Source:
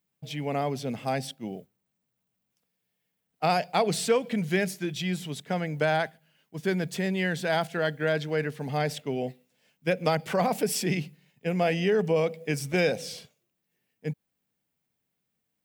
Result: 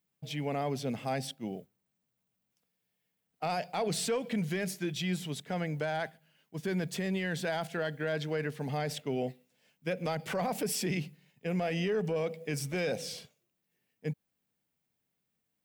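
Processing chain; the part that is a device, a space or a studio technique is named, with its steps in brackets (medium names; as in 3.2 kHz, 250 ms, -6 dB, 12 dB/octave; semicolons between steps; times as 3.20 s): soft clipper into limiter (saturation -13.5 dBFS, distortion -24 dB; peak limiter -22 dBFS, peak gain reduction 7 dB); trim -2 dB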